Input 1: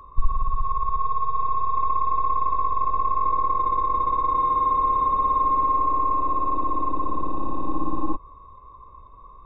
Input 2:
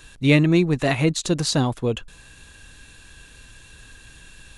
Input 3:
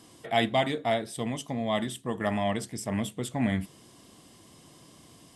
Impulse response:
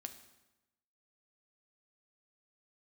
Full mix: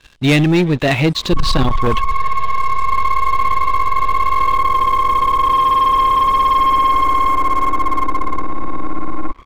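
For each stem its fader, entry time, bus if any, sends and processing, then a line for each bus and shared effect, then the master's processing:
-2.5 dB, 1.15 s, send -13.5 dB, none
+2.5 dB, 0.00 s, send -22 dB, four-pole ladder low-pass 4.8 kHz, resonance 30%
-17.5 dB, 0.00 s, no send, peaking EQ 2.7 kHz +14 dB 1.9 oct; auto duck -10 dB, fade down 0.30 s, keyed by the second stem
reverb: on, RT60 1.0 s, pre-delay 4 ms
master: waveshaping leveller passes 3

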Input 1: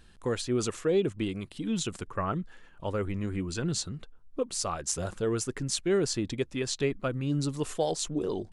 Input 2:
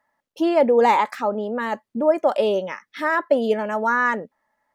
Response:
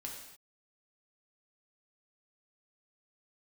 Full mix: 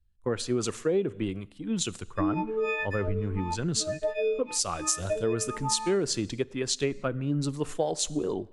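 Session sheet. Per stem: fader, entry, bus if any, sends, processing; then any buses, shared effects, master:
+2.5 dB, 0.00 s, send -15.5 dB, three bands expanded up and down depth 100%
+0.5 dB, 1.80 s, no send, partials quantised in pitch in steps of 6 st; crossover distortion -41 dBFS; talking filter e-u 0.88 Hz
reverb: on, pre-delay 3 ms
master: compression 4:1, threshold -24 dBFS, peak gain reduction 10 dB

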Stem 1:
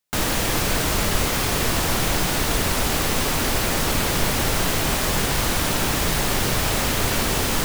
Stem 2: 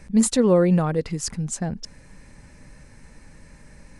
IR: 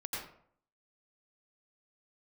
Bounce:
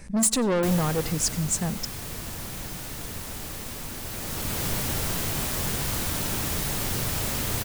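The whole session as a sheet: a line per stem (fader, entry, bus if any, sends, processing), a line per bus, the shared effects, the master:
-6.0 dB, 0.50 s, no send, peaking EQ 110 Hz +6 dB 2.3 oct; flange 0.6 Hz, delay 8.3 ms, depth 1.7 ms, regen -76%; auto duck -8 dB, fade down 1.50 s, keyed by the second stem
+0.5 dB, 0.00 s, send -18 dB, saturation -22 dBFS, distortion -7 dB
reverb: on, RT60 0.60 s, pre-delay 81 ms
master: treble shelf 6.5 kHz +9 dB

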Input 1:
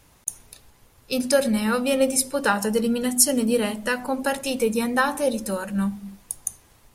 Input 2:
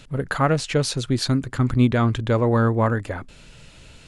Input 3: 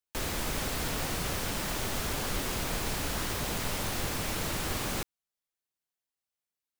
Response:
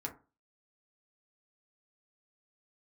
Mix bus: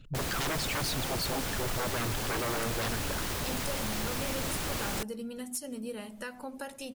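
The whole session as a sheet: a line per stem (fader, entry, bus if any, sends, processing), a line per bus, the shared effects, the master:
-6.0 dB, 2.35 s, no send, compression 2:1, threshold -39 dBFS, peak gain reduction 14.5 dB
-4.0 dB, 0.00 s, send -23.5 dB, resonances exaggerated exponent 2; reverb removal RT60 2 s; hum notches 50/100/150 Hz
-0.5 dB, 0.00 s, no send, none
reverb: on, RT60 0.35 s, pre-delay 4 ms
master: wavefolder -26.5 dBFS

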